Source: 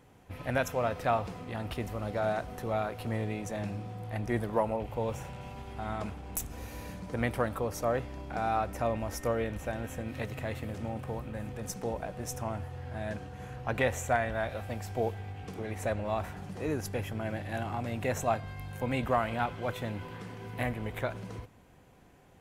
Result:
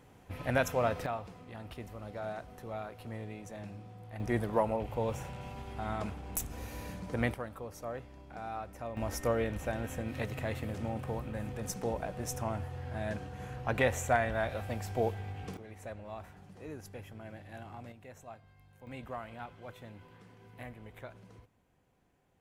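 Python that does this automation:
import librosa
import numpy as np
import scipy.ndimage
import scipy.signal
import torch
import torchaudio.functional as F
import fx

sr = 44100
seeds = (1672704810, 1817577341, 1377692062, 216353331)

y = fx.gain(x, sr, db=fx.steps((0.0, 0.5), (1.06, -9.0), (4.2, -0.5), (7.34, -10.5), (8.97, 0.0), (15.57, -12.0), (17.92, -20.0), (18.87, -13.5)))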